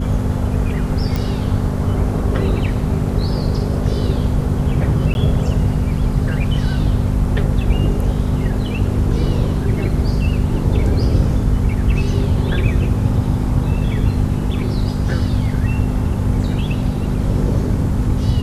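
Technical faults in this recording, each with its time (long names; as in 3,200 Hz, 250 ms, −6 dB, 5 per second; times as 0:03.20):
mains hum 50 Hz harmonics 5 −21 dBFS
0:01.16: click
0:05.14–0:05.15: drop-out 11 ms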